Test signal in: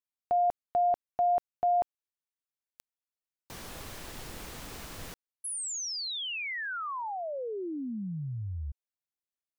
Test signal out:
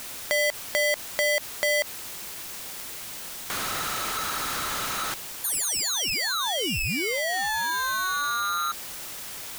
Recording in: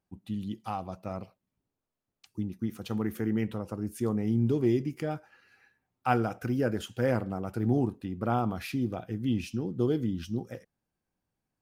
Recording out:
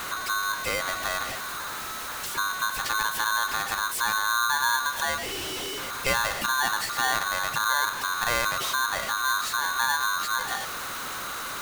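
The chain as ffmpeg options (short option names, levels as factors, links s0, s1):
-af "aeval=exprs='val(0)+0.5*0.0178*sgn(val(0))':c=same,acompressor=threshold=0.0158:ratio=2:attack=6.5:release=113:detection=peak,aeval=exprs='val(0)*sgn(sin(2*PI*1300*n/s))':c=same,volume=2.51"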